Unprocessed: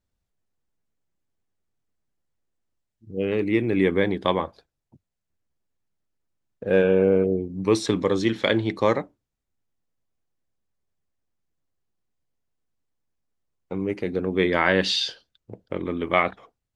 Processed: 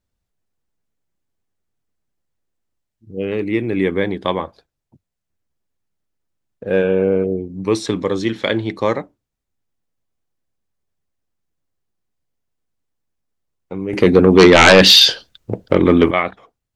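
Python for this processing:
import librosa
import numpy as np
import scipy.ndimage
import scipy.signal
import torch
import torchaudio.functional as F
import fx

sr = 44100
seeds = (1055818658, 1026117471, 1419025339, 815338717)

y = fx.fold_sine(x, sr, drive_db=11, ceiling_db=-4.0, at=(13.93, 16.11))
y = y * 10.0 ** (2.5 / 20.0)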